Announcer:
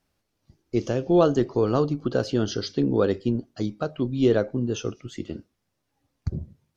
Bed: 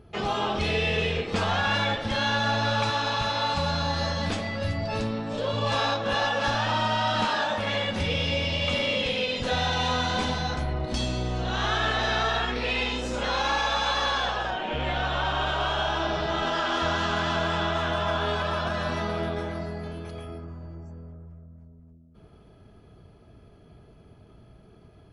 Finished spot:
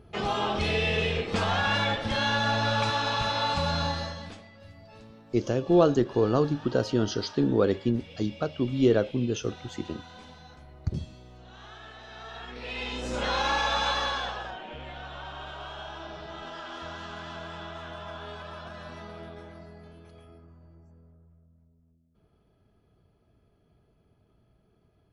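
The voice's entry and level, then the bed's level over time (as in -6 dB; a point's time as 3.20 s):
4.60 s, -1.5 dB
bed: 3.86 s -1 dB
4.51 s -21 dB
12.07 s -21 dB
13.17 s -1 dB
13.87 s -1 dB
14.89 s -13.5 dB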